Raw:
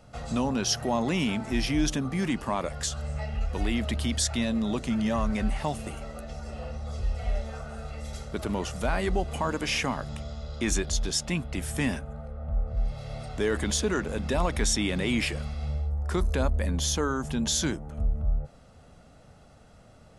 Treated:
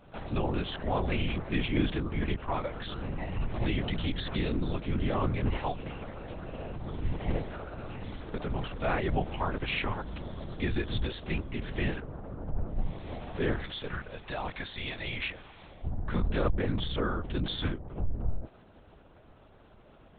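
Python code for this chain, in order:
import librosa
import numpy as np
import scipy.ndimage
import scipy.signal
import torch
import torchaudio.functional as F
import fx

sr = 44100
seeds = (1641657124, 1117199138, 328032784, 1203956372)

y = fx.highpass(x, sr, hz=920.0, slope=6, at=(13.61, 15.84))
y = fx.lpc_vocoder(y, sr, seeds[0], excitation='whisper', order=8)
y = y * librosa.db_to_amplitude(-2.5)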